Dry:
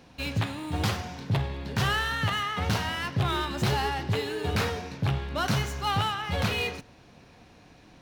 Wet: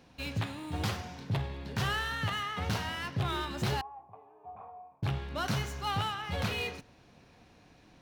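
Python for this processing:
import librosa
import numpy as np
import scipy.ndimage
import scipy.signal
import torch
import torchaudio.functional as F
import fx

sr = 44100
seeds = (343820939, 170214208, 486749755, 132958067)

y = fx.formant_cascade(x, sr, vowel='a', at=(3.81, 5.03))
y = y * librosa.db_to_amplitude(-5.5)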